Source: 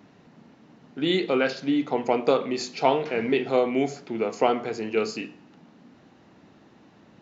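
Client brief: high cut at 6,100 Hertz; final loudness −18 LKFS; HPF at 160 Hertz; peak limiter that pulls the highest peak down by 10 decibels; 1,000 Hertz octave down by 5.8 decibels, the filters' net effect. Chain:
high-pass filter 160 Hz
low-pass filter 6,100 Hz
parametric band 1,000 Hz −8.5 dB
level +12.5 dB
brickwall limiter −7.5 dBFS

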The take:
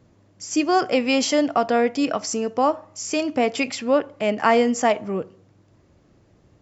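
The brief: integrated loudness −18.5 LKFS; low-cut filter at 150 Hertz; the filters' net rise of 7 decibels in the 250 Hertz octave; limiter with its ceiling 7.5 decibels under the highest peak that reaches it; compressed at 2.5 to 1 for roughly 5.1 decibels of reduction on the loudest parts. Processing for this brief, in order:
high-pass filter 150 Hz
parametric band 250 Hz +8.5 dB
downward compressor 2.5 to 1, threshold −18 dBFS
level +5.5 dB
brickwall limiter −8.5 dBFS

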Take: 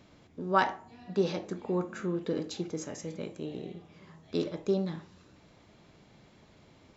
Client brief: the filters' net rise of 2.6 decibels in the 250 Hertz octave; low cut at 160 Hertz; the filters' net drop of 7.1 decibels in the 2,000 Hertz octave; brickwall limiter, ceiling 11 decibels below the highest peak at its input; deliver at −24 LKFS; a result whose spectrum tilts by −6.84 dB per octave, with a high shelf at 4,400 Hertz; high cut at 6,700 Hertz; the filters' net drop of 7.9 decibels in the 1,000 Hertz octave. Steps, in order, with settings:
high-pass filter 160 Hz
low-pass filter 6,700 Hz
parametric band 250 Hz +6.5 dB
parametric band 1,000 Hz −9 dB
parametric band 2,000 Hz −5 dB
high-shelf EQ 4,400 Hz −4.5 dB
level +13.5 dB
brickwall limiter −12 dBFS

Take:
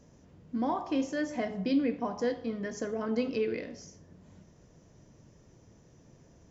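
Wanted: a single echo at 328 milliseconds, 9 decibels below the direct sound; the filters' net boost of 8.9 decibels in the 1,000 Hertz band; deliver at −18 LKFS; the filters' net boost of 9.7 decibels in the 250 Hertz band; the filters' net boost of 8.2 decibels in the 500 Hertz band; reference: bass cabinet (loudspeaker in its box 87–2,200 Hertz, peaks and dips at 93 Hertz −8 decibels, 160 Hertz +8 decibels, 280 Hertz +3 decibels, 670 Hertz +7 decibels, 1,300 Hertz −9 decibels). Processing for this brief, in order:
loudspeaker in its box 87–2,200 Hz, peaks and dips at 93 Hz −8 dB, 160 Hz +8 dB, 280 Hz +3 dB, 670 Hz +7 dB, 1,300 Hz −9 dB
parametric band 250 Hz +6.5 dB
parametric band 500 Hz +4 dB
parametric band 1,000 Hz +7 dB
single-tap delay 328 ms −9 dB
level +5 dB

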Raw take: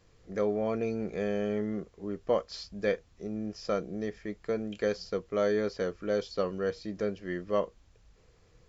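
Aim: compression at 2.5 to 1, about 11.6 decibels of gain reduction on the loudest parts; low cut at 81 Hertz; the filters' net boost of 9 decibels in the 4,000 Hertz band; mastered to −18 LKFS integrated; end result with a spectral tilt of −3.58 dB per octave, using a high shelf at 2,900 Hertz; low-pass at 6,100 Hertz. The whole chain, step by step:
high-pass filter 81 Hz
low-pass filter 6,100 Hz
high-shelf EQ 2,900 Hz +7.5 dB
parametric band 4,000 Hz +6 dB
downward compressor 2.5 to 1, threshold −40 dBFS
level +23 dB

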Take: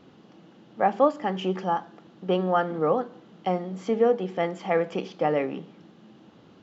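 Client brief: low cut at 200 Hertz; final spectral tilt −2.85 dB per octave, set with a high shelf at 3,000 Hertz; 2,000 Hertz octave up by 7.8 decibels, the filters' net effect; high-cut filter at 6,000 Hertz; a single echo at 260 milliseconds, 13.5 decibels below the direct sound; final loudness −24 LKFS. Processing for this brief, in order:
high-pass filter 200 Hz
low-pass filter 6,000 Hz
parametric band 2,000 Hz +6.5 dB
high-shelf EQ 3,000 Hz +8.5 dB
single-tap delay 260 ms −13.5 dB
level +1 dB

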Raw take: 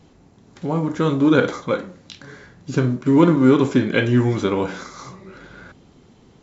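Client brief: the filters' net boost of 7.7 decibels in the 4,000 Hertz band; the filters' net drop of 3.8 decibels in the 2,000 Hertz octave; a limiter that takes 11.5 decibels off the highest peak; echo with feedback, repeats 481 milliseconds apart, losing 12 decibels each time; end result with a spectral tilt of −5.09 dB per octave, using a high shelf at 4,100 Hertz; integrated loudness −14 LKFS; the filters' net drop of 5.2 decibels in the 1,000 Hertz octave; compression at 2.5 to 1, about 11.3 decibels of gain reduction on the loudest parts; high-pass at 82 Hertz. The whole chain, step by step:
high-pass filter 82 Hz
parametric band 1,000 Hz −5.5 dB
parametric band 2,000 Hz −6.5 dB
parametric band 4,000 Hz +8.5 dB
high-shelf EQ 4,100 Hz +7.5 dB
downward compressor 2.5 to 1, threshold −27 dBFS
brickwall limiter −22.5 dBFS
repeating echo 481 ms, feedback 25%, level −12 dB
level +18.5 dB

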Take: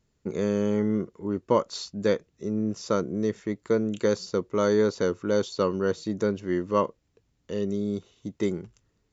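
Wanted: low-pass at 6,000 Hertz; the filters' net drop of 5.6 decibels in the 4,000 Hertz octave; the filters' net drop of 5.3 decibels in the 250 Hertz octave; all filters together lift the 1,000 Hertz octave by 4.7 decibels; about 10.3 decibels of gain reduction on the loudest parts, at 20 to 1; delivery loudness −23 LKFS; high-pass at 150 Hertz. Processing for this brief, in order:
high-pass filter 150 Hz
low-pass filter 6,000 Hz
parametric band 250 Hz −6.5 dB
parametric band 1,000 Hz +6 dB
parametric band 4,000 Hz −6 dB
downward compressor 20 to 1, threshold −25 dBFS
level +10.5 dB

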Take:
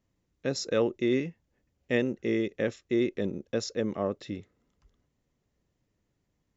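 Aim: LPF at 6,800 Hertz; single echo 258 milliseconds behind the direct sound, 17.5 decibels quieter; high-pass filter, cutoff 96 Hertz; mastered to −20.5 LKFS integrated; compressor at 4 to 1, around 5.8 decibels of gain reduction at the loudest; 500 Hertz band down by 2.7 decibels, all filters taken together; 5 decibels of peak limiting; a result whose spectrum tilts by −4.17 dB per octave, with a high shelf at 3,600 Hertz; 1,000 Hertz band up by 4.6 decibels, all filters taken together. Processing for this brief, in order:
high-pass filter 96 Hz
low-pass filter 6,800 Hz
parametric band 500 Hz −5 dB
parametric band 1,000 Hz +7 dB
high-shelf EQ 3,600 Hz +7 dB
downward compressor 4 to 1, threshold −29 dBFS
brickwall limiter −22.5 dBFS
single-tap delay 258 ms −17.5 dB
level +16 dB

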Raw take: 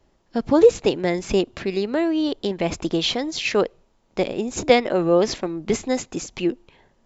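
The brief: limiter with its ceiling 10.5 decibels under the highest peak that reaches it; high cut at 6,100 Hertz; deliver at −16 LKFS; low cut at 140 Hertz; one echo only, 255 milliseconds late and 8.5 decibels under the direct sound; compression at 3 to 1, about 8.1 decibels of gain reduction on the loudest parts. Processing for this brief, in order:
high-pass filter 140 Hz
low-pass filter 6,100 Hz
downward compressor 3 to 1, threshold −19 dBFS
brickwall limiter −19 dBFS
single-tap delay 255 ms −8.5 dB
level +13 dB

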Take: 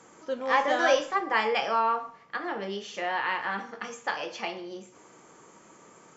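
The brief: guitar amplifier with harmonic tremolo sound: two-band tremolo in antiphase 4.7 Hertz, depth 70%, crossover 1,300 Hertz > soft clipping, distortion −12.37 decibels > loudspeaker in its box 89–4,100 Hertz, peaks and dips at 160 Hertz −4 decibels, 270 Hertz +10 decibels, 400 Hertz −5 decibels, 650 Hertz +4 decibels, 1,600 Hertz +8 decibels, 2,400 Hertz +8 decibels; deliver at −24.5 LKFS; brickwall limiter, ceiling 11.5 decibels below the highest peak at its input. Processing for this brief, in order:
brickwall limiter −22 dBFS
two-band tremolo in antiphase 4.7 Hz, depth 70%, crossover 1,300 Hz
soft clipping −32.5 dBFS
loudspeaker in its box 89–4,100 Hz, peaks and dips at 160 Hz −4 dB, 270 Hz +10 dB, 400 Hz −5 dB, 650 Hz +4 dB, 1,600 Hz +8 dB, 2,400 Hz +8 dB
level +11.5 dB

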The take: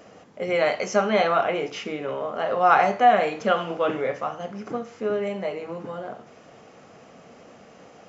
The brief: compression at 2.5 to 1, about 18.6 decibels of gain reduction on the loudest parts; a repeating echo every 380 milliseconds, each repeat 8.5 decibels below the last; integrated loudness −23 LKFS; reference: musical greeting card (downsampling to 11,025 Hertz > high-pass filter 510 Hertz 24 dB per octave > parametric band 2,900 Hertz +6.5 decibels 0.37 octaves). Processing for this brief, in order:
downward compressor 2.5 to 1, threshold −42 dBFS
repeating echo 380 ms, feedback 38%, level −8.5 dB
downsampling to 11,025 Hz
high-pass filter 510 Hz 24 dB per octave
parametric band 2,900 Hz +6.5 dB 0.37 octaves
level +17.5 dB

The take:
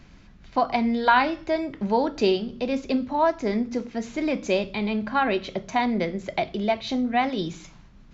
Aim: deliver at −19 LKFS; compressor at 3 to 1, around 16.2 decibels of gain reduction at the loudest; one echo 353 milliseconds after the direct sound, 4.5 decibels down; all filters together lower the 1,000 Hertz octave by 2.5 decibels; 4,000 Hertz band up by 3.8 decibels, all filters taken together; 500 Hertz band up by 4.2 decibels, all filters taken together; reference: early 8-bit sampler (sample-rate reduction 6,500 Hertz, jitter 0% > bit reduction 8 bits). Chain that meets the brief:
parametric band 500 Hz +7.5 dB
parametric band 1,000 Hz −7 dB
parametric band 4,000 Hz +5 dB
downward compressor 3 to 1, threshold −36 dBFS
single-tap delay 353 ms −4.5 dB
sample-rate reduction 6,500 Hz, jitter 0%
bit reduction 8 bits
level +15.5 dB

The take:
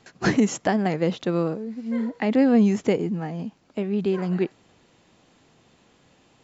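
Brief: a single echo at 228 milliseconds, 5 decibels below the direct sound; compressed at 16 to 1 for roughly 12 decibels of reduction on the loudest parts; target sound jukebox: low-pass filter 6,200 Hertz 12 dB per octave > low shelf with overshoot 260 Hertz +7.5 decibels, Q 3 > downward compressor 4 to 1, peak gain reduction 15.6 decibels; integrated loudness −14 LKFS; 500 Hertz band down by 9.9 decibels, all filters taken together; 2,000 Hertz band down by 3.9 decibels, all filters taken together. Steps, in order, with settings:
parametric band 500 Hz −8 dB
parametric band 2,000 Hz −4 dB
downward compressor 16 to 1, threshold −28 dBFS
low-pass filter 6,200 Hz 12 dB per octave
low shelf with overshoot 260 Hz +7.5 dB, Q 3
single-tap delay 228 ms −5 dB
downward compressor 4 to 1, threshold −33 dBFS
level +20 dB

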